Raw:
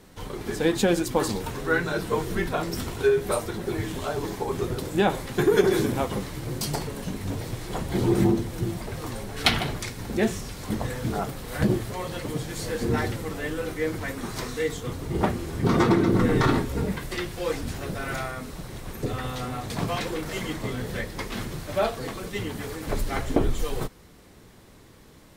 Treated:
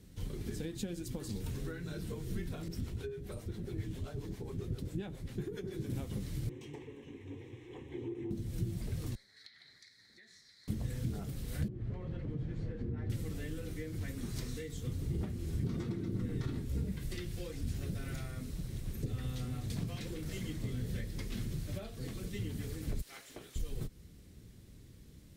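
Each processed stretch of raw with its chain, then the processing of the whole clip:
0:02.68–0:05.90: high-shelf EQ 4,500 Hz −7.5 dB + two-band tremolo in antiphase 7.4 Hz, crossover 440 Hz
0:06.49–0:08.31: high-pass filter 210 Hz + high-frequency loss of the air 180 metres + phaser with its sweep stopped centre 940 Hz, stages 8
0:09.15–0:10.68: pair of resonant band-passes 2,800 Hz, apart 1.1 octaves + downward compressor, threshold −43 dBFS
0:11.68–0:13.10: low-pass filter 1,600 Hz + downward compressor 5 to 1, threshold −28 dBFS
0:23.01–0:23.56: high-pass filter 830 Hz + amplitude modulation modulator 250 Hz, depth 45%
whole clip: downward compressor 6 to 1, threshold −29 dBFS; high-pass filter 79 Hz 6 dB per octave; guitar amp tone stack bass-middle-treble 10-0-1; level +12.5 dB

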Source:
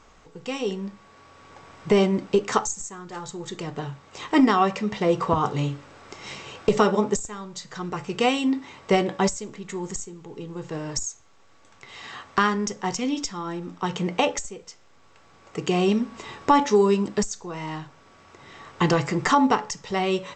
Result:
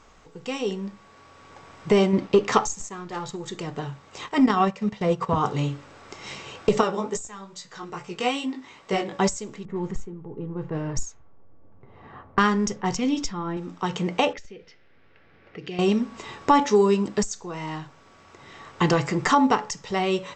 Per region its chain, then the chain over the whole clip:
0:02.13–0:03.36: leveller curve on the samples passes 1 + low-pass filter 5,500 Hz + notch filter 1,500 Hz, Q 16
0:04.26–0:05.36: dynamic equaliser 180 Hz, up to +5 dB, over −30 dBFS, Q 1 + notch filter 320 Hz, Q 5 + transient designer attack −5 dB, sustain −11 dB
0:06.81–0:09.12: low-shelf EQ 330 Hz −5.5 dB + chorus effect 2.4 Hz, delay 16 ms, depth 4.4 ms
0:09.65–0:13.57: low-pass that shuts in the quiet parts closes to 500 Hz, open at −21.5 dBFS + low-shelf EQ 150 Hz +10 dB
0:14.33–0:15.79: low-pass that shuts in the quiet parts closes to 2,200 Hz, open at −20 dBFS + drawn EQ curve 470 Hz 0 dB, 1,100 Hz −10 dB, 1,700 Hz +4 dB, 5,300 Hz +1 dB, 7,900 Hz −15 dB + downward compressor 2 to 1, threshold −40 dBFS
whole clip: no processing

